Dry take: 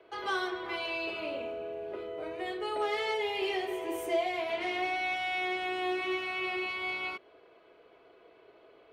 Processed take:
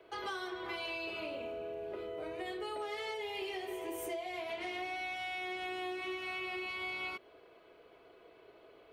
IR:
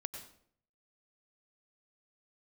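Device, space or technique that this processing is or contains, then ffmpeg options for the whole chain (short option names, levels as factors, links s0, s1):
ASMR close-microphone chain: -af "lowshelf=f=150:g=6,acompressor=threshold=0.0158:ratio=6,highshelf=f=6100:g=8,volume=0.841"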